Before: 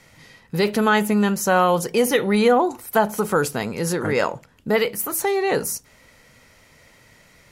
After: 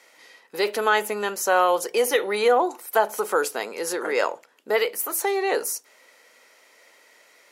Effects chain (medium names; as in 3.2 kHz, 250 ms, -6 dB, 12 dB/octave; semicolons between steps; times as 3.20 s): high-pass 360 Hz 24 dB/octave; trim -1.5 dB